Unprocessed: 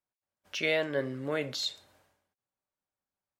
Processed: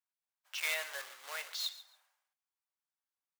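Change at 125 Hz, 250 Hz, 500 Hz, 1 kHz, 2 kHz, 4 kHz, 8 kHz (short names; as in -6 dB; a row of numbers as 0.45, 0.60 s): under -40 dB, under -40 dB, -18.5 dB, -4.5 dB, -4.0 dB, -4.0 dB, +1.5 dB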